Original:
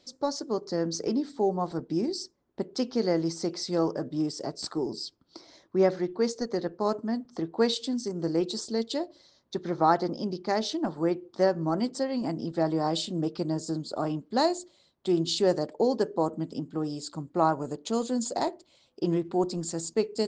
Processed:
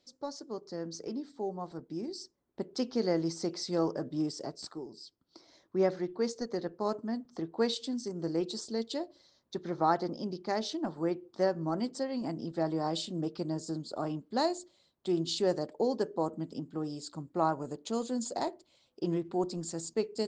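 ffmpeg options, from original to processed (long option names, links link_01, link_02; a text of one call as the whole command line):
ffmpeg -i in.wav -af "volume=6.5dB,afade=type=in:start_time=1.99:duration=0.86:silence=0.473151,afade=type=out:start_time=4.31:duration=0.59:silence=0.266073,afade=type=in:start_time=4.9:duration=0.89:silence=0.316228" out.wav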